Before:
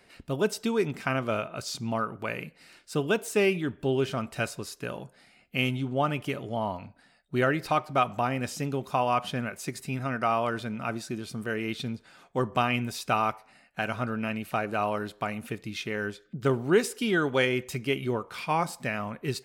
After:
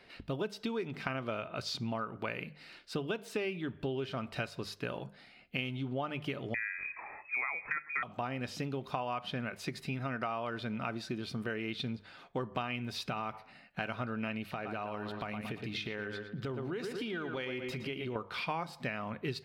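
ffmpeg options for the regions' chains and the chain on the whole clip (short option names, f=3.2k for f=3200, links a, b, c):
-filter_complex "[0:a]asettb=1/sr,asplit=3[a][b][c];[a]atrim=end=6.544[d];[b]atrim=start=6.54:end=8.03,asetpts=PTS-STARTPTS,afade=t=in:d=0.004:c=qsin,afade=t=out:st=1.486:d=0.004:c=qsin,acompressor=mode=upward:threshold=-30dB:ratio=2.5:attack=3.2:release=140:knee=2.83:detection=peak,lowpass=f=2.2k:t=q:w=0.5098,lowpass=f=2.2k:t=q:w=0.6013,lowpass=f=2.2k:t=q:w=0.9,lowpass=f=2.2k:t=q:w=2.563,afreqshift=-2600[e];[c]atrim=start=8.026[f];[d][e]acrossfade=d=0.004:c1=hsin:c2=qsin[g];[g][f]acrossfade=d=0.004:c1=qsin:c2=hsin,asettb=1/sr,asplit=3[h][i][j];[h]atrim=end=12.954[k];[i]atrim=start=12.95:end=13.81,asetpts=PTS-STARTPTS,afade=t=in:d=0.004:c=qsin,afade=t=out:st=0.856:d=0.004:c=qsin,equalizer=f=160:t=o:w=1.1:g=5.5,acompressor=threshold=-31dB:ratio=3:attack=3.2:release=140:knee=1:detection=peak[l];[j]atrim=start=13.806[m];[k][l]acrossfade=d=0.004:c1=hsin:c2=qsin[n];[n][m]acrossfade=d=0.004:c1=qsin:c2=hsin,asettb=1/sr,asplit=3[o][p][q];[o]atrim=end=14.514[r];[p]atrim=start=14.51:end=18.16,asetpts=PTS-STARTPTS,afade=t=in:d=0.004:c=qsin,afade=t=out:st=3.646:d=0.004:c=qsin,asplit=2[s][t];[t]adelay=114,lowpass=f=4k:p=1,volume=-9.5dB,asplit=2[u][v];[v]adelay=114,lowpass=f=4k:p=1,volume=0.39,asplit=2[w][x];[x]adelay=114,lowpass=f=4k:p=1,volume=0.39,asplit=2[y][z];[z]adelay=114,lowpass=f=4k:p=1,volume=0.39[aa];[s][u][w][y][aa]amix=inputs=5:normalize=0,atrim=end_sample=160965,acompressor=threshold=-34dB:ratio=5:attack=3.2:release=140:knee=1:detection=peak[ab];[q]atrim=start=18.156[ac];[r][ab]acrossfade=d=0.004:c1=hsin:c2=qsin[ad];[ad][ac]acrossfade=d=0.004:c1=qsin:c2=hsin,highshelf=f=5.6k:t=q:w=1.5:g=-10,bandreject=f=50:t=h:w=6,bandreject=f=100:t=h:w=6,bandreject=f=150:t=h:w=6,bandreject=f=200:t=h:w=6,acompressor=threshold=-33dB:ratio=6"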